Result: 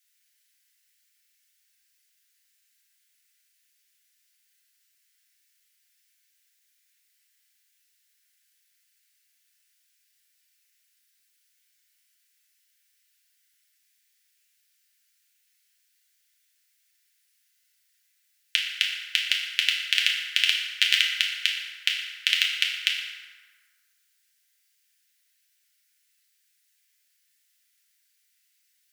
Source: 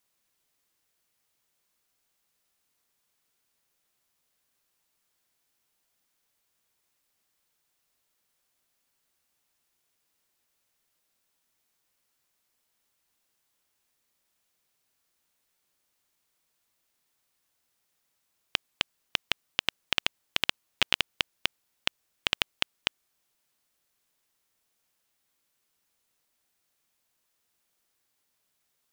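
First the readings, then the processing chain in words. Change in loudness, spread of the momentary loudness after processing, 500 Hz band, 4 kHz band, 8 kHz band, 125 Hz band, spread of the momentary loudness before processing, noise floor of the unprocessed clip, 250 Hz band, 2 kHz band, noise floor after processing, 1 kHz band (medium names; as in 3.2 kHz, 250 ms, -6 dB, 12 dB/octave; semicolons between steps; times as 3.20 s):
+6.5 dB, 6 LU, under -40 dB, +7.0 dB, +7.0 dB, under -40 dB, 6 LU, -77 dBFS, under -40 dB, +7.0 dB, -70 dBFS, -9.0 dB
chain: steep high-pass 1.6 kHz 48 dB/octave; FDN reverb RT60 1.7 s, high-frequency decay 0.55×, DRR -3 dB; trim +3.5 dB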